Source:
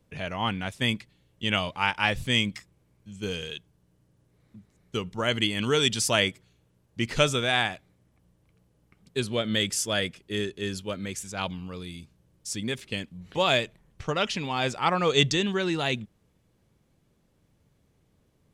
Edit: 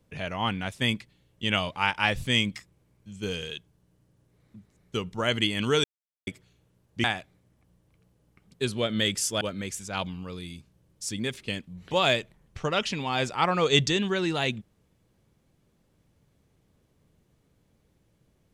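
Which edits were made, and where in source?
5.84–6.27 s: mute
7.04–7.59 s: delete
9.96–10.85 s: delete

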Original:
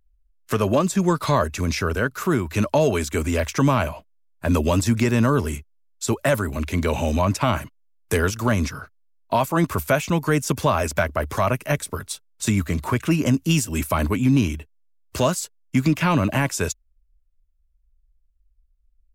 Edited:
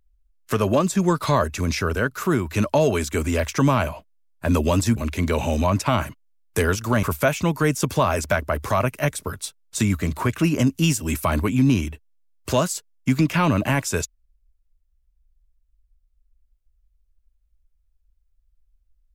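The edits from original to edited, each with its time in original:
4.96–6.51 s: delete
8.58–9.70 s: delete

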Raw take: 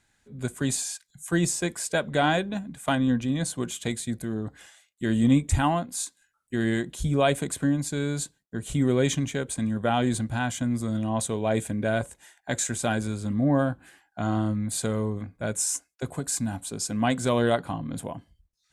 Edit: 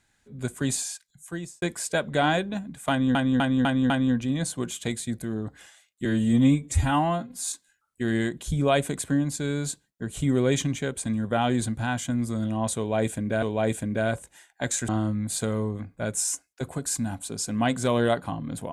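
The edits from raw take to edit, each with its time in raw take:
0.82–1.62 s: fade out
2.90–3.15 s: loop, 5 plays
5.05–6.00 s: stretch 1.5×
11.30–11.95 s: loop, 2 plays
12.76–14.30 s: delete

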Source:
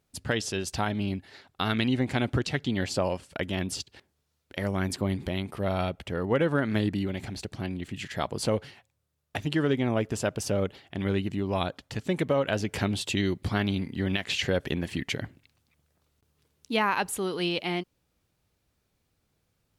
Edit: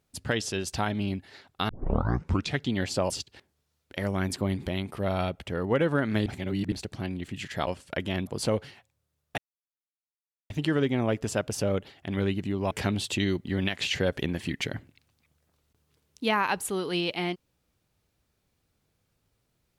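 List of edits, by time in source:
1.69 s: tape start 0.87 s
3.10–3.70 s: move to 8.27 s
6.86–7.32 s: reverse
9.38 s: insert silence 1.12 s
11.59–12.68 s: delete
13.42–13.93 s: delete

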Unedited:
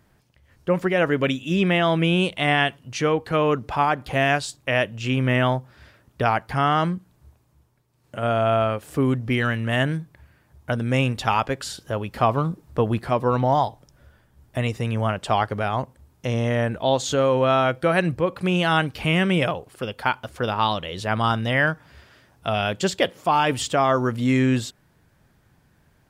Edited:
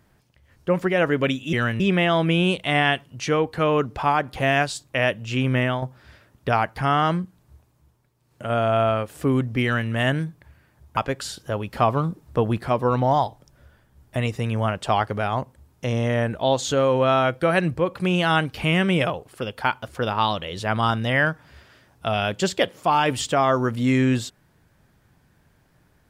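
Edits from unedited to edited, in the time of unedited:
5.28–5.55 s: fade out, to -8 dB
9.36–9.63 s: copy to 1.53 s
10.70–11.38 s: delete

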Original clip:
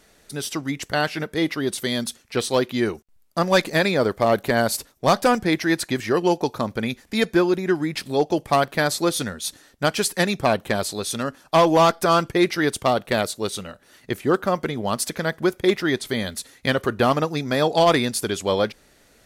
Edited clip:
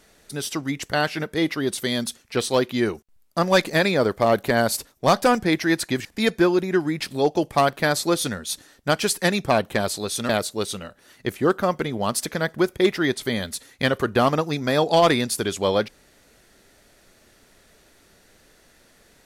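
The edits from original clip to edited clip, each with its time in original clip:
6.05–7.00 s: delete
11.24–13.13 s: delete

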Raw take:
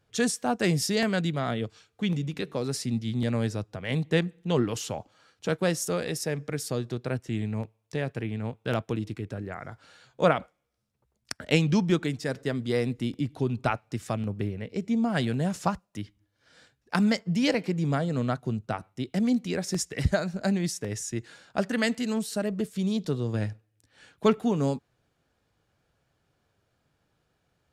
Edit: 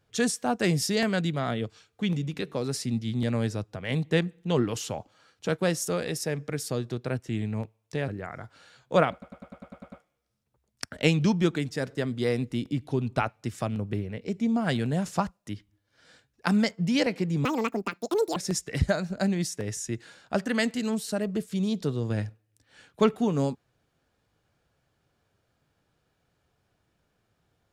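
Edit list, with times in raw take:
8.08–9.36 s: delete
10.40 s: stutter 0.10 s, 9 plays
17.93–19.60 s: speed 183%

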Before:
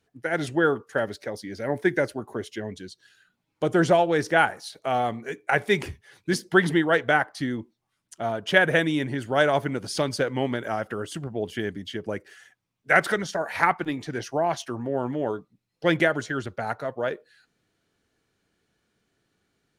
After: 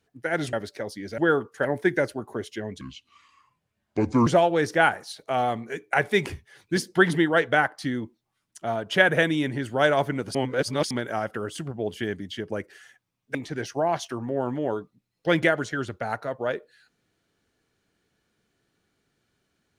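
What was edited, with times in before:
0.53–1.00 s: move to 1.65 s
2.81–3.83 s: speed 70%
9.91–10.47 s: reverse
12.91–13.92 s: delete

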